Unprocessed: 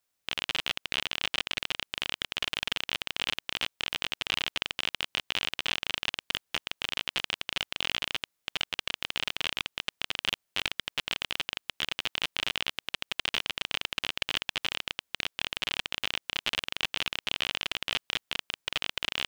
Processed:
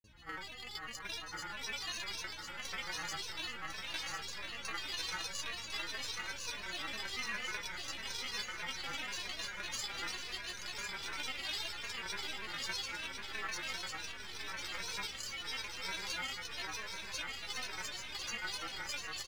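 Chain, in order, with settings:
peak hold with a rise ahead of every peak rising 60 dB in 1.43 s
noise gate with hold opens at −21 dBFS
EQ curve with evenly spaced ripples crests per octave 1.6, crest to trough 13 dB
compressor whose output falls as the input rises −33 dBFS, ratio −0.5
stiff-string resonator 300 Hz, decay 0.28 s, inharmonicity 0.002
mains hum 60 Hz, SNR 19 dB
granular cloud, pitch spread up and down by 12 semitones
on a send: repeating echo 1,051 ms, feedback 54%, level −6 dB
on the sum: level +5.5 dB

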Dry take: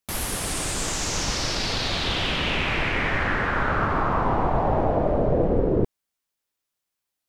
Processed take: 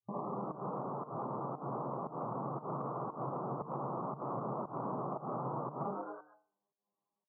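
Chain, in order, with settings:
stiff-string resonator 200 Hz, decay 0.33 s, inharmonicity 0.002
wrap-around overflow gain 37.5 dB
brick-wall band-pass 110–1,200 Hz
echo with shifted repeats 107 ms, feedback 35%, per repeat +110 Hz, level −5 dB
fake sidechain pumping 116 BPM, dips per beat 1, −23 dB, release 219 ms
parametric band 140 Hz +9.5 dB 0.36 octaves
hum removal 151.7 Hz, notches 34
downward compressor, threshold −52 dBFS, peak gain reduction 10.5 dB
level +16.5 dB

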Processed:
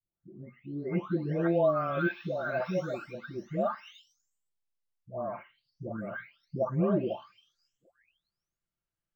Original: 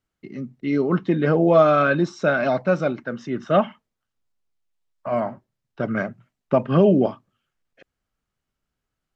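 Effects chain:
every frequency bin delayed by itself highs late, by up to 893 ms
linearly interpolated sample-rate reduction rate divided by 2×
level −9 dB

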